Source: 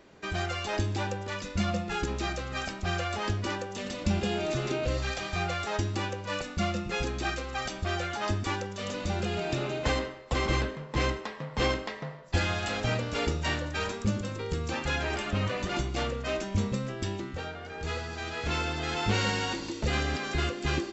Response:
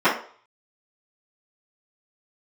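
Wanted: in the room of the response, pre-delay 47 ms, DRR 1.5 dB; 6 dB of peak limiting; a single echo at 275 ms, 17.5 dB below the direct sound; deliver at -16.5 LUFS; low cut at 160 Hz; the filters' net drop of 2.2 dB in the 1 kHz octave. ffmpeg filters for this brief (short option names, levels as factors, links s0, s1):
-filter_complex "[0:a]highpass=160,equalizer=f=1000:t=o:g=-3,alimiter=limit=0.075:level=0:latency=1,aecho=1:1:275:0.133,asplit=2[s0][s1];[1:a]atrim=start_sample=2205,adelay=47[s2];[s1][s2]afir=irnorm=-1:irlink=0,volume=0.0708[s3];[s0][s3]amix=inputs=2:normalize=0,volume=5.96"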